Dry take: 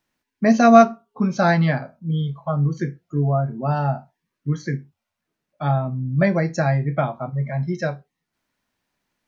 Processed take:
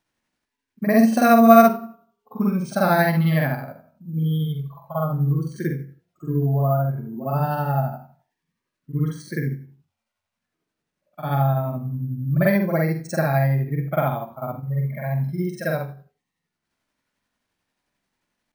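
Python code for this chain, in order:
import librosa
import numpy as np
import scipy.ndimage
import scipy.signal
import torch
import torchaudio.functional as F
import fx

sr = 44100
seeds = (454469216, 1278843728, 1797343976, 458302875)

y = fx.stretch_grains(x, sr, factor=2.0, grain_ms=177.0)
y = np.repeat(y[::3], 3)[:len(y)]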